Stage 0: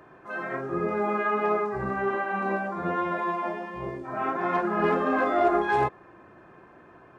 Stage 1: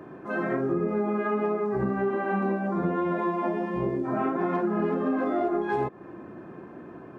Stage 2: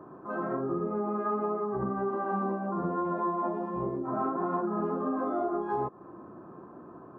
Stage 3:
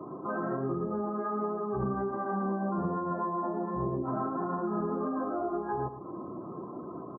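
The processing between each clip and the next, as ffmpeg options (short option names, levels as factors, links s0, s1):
-af "equalizer=f=240:w=0.58:g=14,acompressor=threshold=0.0708:ratio=10"
-af "highshelf=f=1600:t=q:w=3:g=-9.5,volume=0.531"
-filter_complex "[0:a]afftdn=nr=22:nf=-50,acrossover=split=130[s0][s1];[s1]acompressor=threshold=0.0112:ratio=4[s2];[s0][s2]amix=inputs=2:normalize=0,asplit=2[s3][s4];[s4]aecho=0:1:113:0.282[s5];[s3][s5]amix=inputs=2:normalize=0,volume=2.24"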